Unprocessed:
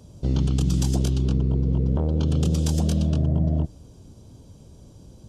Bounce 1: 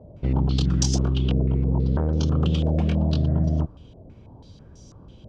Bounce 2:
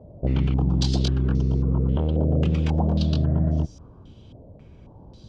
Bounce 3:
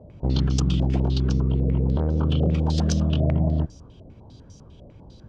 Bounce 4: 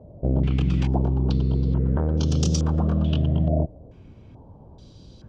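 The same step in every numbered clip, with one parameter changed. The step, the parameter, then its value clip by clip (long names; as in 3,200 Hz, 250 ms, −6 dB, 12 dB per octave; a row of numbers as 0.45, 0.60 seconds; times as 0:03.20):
low-pass on a step sequencer, speed: 6.1, 3.7, 10, 2.3 Hertz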